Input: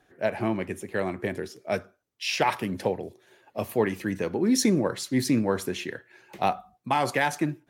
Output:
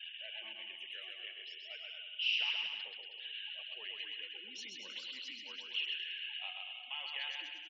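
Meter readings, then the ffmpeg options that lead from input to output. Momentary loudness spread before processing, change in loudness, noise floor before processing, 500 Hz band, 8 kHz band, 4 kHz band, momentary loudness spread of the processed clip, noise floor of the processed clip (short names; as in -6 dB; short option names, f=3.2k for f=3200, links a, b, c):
12 LU, -12.0 dB, -68 dBFS, -33.5 dB, -25.0 dB, +0.5 dB, 11 LU, -51 dBFS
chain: -af "aeval=exprs='val(0)+0.5*0.0531*sgn(val(0))':c=same,bandpass=f=2.9k:t=q:w=18:csg=0,afftfilt=real='re*gte(hypot(re,im),0.00224)':imag='im*gte(hypot(re,im),0.00224)':win_size=1024:overlap=0.75,aecho=1:1:130|234|317.2|383.8|437:0.631|0.398|0.251|0.158|0.1,volume=2.5dB"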